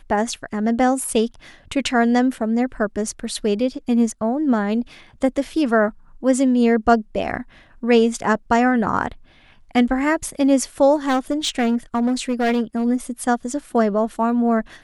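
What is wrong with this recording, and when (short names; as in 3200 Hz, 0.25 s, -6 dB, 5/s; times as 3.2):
11.07–12.85 clipped -15 dBFS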